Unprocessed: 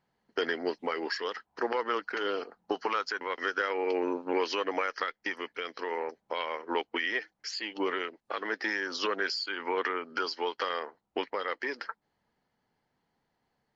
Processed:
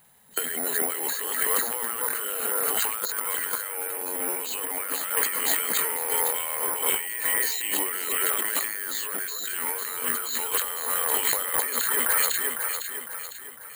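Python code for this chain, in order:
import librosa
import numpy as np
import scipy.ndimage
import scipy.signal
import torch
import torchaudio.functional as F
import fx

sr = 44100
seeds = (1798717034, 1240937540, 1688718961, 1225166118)

p1 = fx.freq_compress(x, sr, knee_hz=3000.0, ratio=1.5)
p2 = fx.high_shelf(p1, sr, hz=2600.0, db=8.0)
p3 = fx.level_steps(p2, sr, step_db=12)
p4 = p2 + (p3 * 10.0 ** (-3.0 / 20.0))
p5 = fx.peak_eq(p4, sr, hz=320.0, db=-8.0, octaves=0.9)
p6 = fx.transient(p5, sr, attack_db=-9, sustain_db=10)
p7 = fx.echo_alternate(p6, sr, ms=252, hz=1800.0, feedback_pct=67, wet_db=-4.5)
p8 = (np.kron(scipy.signal.resample_poly(p7, 1, 4), np.eye(4)[0]) * 4)[:len(p7)]
p9 = fx.over_compress(p8, sr, threshold_db=-32.0, ratio=-1.0)
y = p9 * 10.0 ** (4.0 / 20.0)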